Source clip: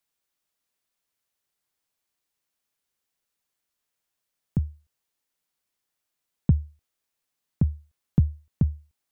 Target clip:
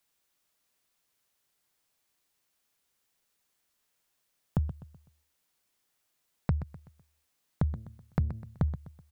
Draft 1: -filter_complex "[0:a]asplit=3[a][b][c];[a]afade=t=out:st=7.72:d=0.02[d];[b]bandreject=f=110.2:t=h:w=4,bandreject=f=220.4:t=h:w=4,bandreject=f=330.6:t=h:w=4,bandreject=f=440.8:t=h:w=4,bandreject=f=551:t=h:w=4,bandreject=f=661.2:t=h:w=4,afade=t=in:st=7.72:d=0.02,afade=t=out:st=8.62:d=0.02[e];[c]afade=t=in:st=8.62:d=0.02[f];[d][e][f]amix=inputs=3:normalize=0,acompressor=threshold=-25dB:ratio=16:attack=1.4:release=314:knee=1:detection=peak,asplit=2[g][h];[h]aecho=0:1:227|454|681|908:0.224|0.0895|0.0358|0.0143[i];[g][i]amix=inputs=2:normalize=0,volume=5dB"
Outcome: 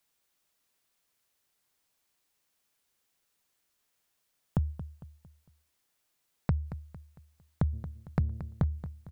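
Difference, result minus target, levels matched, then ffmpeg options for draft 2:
echo 0.101 s late
-filter_complex "[0:a]asplit=3[a][b][c];[a]afade=t=out:st=7.72:d=0.02[d];[b]bandreject=f=110.2:t=h:w=4,bandreject=f=220.4:t=h:w=4,bandreject=f=330.6:t=h:w=4,bandreject=f=440.8:t=h:w=4,bandreject=f=551:t=h:w=4,bandreject=f=661.2:t=h:w=4,afade=t=in:st=7.72:d=0.02,afade=t=out:st=8.62:d=0.02[e];[c]afade=t=in:st=8.62:d=0.02[f];[d][e][f]amix=inputs=3:normalize=0,acompressor=threshold=-25dB:ratio=16:attack=1.4:release=314:knee=1:detection=peak,asplit=2[g][h];[h]aecho=0:1:126|252|378|504:0.224|0.0895|0.0358|0.0143[i];[g][i]amix=inputs=2:normalize=0,volume=5dB"

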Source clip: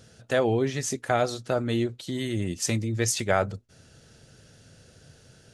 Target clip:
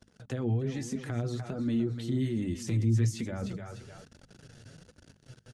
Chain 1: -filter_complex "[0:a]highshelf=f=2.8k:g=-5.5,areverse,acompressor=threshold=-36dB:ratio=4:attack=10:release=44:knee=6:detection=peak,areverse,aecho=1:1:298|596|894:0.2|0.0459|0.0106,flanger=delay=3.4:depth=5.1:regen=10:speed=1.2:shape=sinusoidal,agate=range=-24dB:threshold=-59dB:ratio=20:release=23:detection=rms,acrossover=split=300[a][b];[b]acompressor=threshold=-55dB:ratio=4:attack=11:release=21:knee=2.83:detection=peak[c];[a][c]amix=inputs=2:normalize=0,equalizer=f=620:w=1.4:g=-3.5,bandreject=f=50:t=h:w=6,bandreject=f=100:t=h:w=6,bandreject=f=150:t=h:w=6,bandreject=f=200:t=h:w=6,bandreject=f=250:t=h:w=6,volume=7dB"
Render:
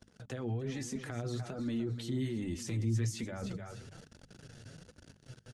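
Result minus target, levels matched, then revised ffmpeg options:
compressor: peak gain reduction +8 dB
-filter_complex "[0:a]highshelf=f=2.8k:g=-5.5,areverse,acompressor=threshold=-25.5dB:ratio=4:attack=10:release=44:knee=6:detection=peak,areverse,aecho=1:1:298|596|894:0.2|0.0459|0.0106,flanger=delay=3.4:depth=5.1:regen=10:speed=1.2:shape=sinusoidal,agate=range=-24dB:threshold=-59dB:ratio=20:release=23:detection=rms,acrossover=split=300[a][b];[b]acompressor=threshold=-55dB:ratio=4:attack=11:release=21:knee=2.83:detection=peak[c];[a][c]amix=inputs=2:normalize=0,equalizer=f=620:w=1.4:g=-3.5,bandreject=f=50:t=h:w=6,bandreject=f=100:t=h:w=6,bandreject=f=150:t=h:w=6,bandreject=f=200:t=h:w=6,bandreject=f=250:t=h:w=6,volume=7dB"

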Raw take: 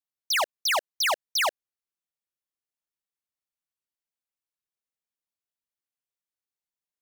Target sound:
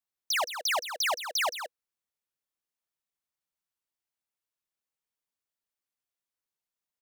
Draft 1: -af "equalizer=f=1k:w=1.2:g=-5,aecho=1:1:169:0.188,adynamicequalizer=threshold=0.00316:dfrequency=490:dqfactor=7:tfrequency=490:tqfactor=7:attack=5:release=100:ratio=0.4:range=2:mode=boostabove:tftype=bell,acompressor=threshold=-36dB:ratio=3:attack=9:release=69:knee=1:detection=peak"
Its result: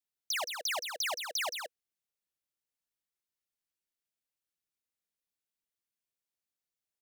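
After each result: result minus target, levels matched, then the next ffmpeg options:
compressor: peak gain reduction +3.5 dB; 1000 Hz band -2.5 dB
-af "equalizer=f=1k:w=1.2:g=-5,aecho=1:1:169:0.188,adynamicequalizer=threshold=0.00316:dfrequency=490:dqfactor=7:tfrequency=490:tqfactor=7:attack=5:release=100:ratio=0.4:range=2:mode=boostabove:tftype=bell,acompressor=threshold=-29dB:ratio=3:attack=9:release=69:knee=1:detection=peak"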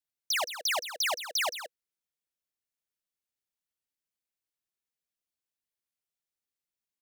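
1000 Hz band -3.0 dB
-af "equalizer=f=1k:w=1.2:g=2,aecho=1:1:169:0.188,adynamicequalizer=threshold=0.00316:dfrequency=490:dqfactor=7:tfrequency=490:tqfactor=7:attack=5:release=100:ratio=0.4:range=2:mode=boostabove:tftype=bell,acompressor=threshold=-29dB:ratio=3:attack=9:release=69:knee=1:detection=peak"

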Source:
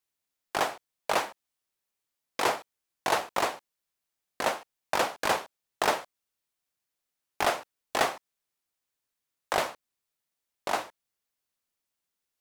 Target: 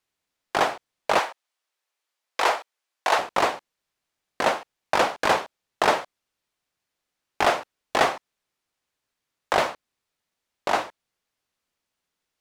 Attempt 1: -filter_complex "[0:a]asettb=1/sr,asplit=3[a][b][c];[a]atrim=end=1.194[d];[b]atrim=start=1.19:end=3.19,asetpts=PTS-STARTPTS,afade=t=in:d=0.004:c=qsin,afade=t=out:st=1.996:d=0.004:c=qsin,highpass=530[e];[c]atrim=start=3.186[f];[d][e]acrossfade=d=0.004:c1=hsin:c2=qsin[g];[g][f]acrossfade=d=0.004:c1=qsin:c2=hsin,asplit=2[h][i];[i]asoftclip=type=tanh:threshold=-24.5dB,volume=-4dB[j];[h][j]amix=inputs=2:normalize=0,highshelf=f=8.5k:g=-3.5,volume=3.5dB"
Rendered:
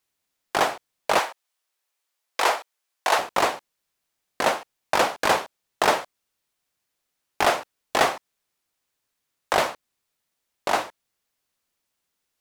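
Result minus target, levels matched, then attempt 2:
8000 Hz band +4.0 dB
-filter_complex "[0:a]asettb=1/sr,asplit=3[a][b][c];[a]atrim=end=1.194[d];[b]atrim=start=1.19:end=3.19,asetpts=PTS-STARTPTS,afade=t=in:d=0.004:c=qsin,afade=t=out:st=1.996:d=0.004:c=qsin,highpass=530[e];[c]atrim=start=3.186[f];[d][e]acrossfade=d=0.004:c1=hsin:c2=qsin[g];[g][f]acrossfade=d=0.004:c1=qsin:c2=hsin,asplit=2[h][i];[i]asoftclip=type=tanh:threshold=-24.5dB,volume=-4dB[j];[h][j]amix=inputs=2:normalize=0,highshelf=f=8.5k:g=-14,volume=3.5dB"

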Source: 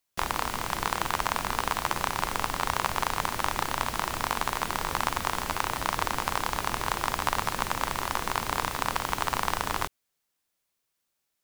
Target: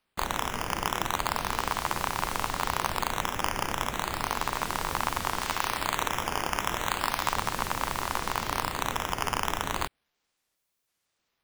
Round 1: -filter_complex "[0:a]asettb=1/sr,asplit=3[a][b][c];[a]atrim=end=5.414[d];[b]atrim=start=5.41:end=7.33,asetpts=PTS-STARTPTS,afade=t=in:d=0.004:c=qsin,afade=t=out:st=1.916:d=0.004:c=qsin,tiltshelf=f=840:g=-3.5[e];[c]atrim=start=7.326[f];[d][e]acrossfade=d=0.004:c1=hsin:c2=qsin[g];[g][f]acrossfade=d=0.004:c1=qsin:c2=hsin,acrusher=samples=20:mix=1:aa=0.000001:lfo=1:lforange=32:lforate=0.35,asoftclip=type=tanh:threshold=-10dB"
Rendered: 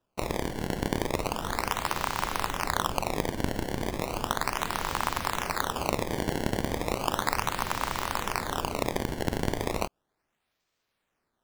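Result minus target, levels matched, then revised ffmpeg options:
decimation with a swept rate: distortion +11 dB
-filter_complex "[0:a]asettb=1/sr,asplit=3[a][b][c];[a]atrim=end=5.414[d];[b]atrim=start=5.41:end=7.33,asetpts=PTS-STARTPTS,afade=t=in:d=0.004:c=qsin,afade=t=out:st=1.916:d=0.004:c=qsin,tiltshelf=f=840:g=-3.5[e];[c]atrim=start=7.326[f];[d][e]acrossfade=d=0.004:c1=hsin:c2=qsin[g];[g][f]acrossfade=d=0.004:c1=qsin:c2=hsin,acrusher=samples=6:mix=1:aa=0.000001:lfo=1:lforange=9.6:lforate=0.35,asoftclip=type=tanh:threshold=-10dB"

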